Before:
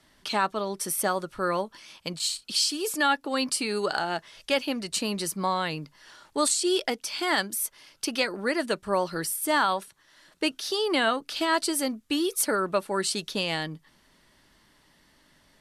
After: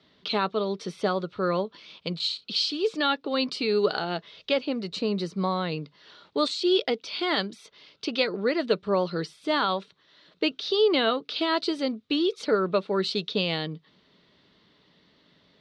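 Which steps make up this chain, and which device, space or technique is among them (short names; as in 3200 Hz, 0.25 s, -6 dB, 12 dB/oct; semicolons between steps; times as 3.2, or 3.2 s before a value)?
guitar cabinet (speaker cabinet 87–4400 Hz, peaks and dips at 180 Hz +6 dB, 440 Hz +8 dB, 870 Hz -5 dB, 1700 Hz -6 dB, 3800 Hz +7 dB); 4.53–5.72 dynamic EQ 3200 Hz, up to -7 dB, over -43 dBFS, Q 1.2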